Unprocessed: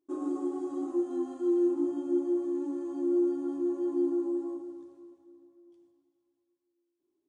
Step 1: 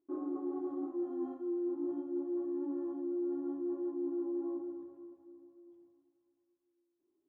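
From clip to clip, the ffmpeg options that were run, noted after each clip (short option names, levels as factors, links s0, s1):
-af "lowpass=1400,areverse,acompressor=threshold=0.02:ratio=6,areverse"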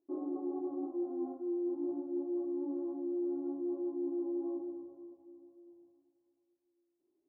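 -af "lowpass=f=710:t=q:w=1.7,volume=0.841"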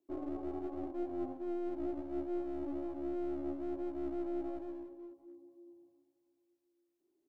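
-filter_complex "[0:a]acrossover=split=170|440[s0][s1][s2];[s1]aeval=exprs='clip(val(0),-1,0.00224)':c=same[s3];[s0][s3][s2]amix=inputs=3:normalize=0,aecho=1:1:190:0.188"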